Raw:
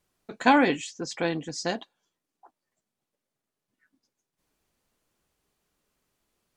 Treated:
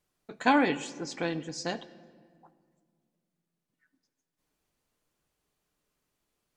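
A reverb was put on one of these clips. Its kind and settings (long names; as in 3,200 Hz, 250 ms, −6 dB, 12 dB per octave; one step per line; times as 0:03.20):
rectangular room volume 2,800 cubic metres, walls mixed, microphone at 0.44 metres
level −4 dB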